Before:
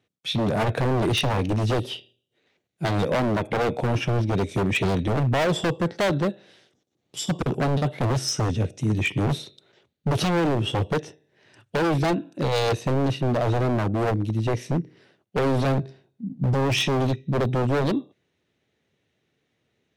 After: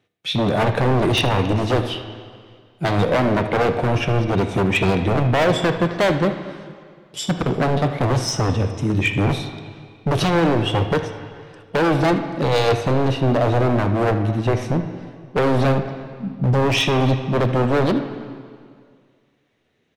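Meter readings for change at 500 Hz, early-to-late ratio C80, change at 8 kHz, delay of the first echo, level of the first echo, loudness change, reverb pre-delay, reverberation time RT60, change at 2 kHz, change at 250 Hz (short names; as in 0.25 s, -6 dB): +5.5 dB, 10.0 dB, +1.5 dB, 77 ms, -16.0 dB, +4.5 dB, 7 ms, 2.0 s, +5.5 dB, +4.5 dB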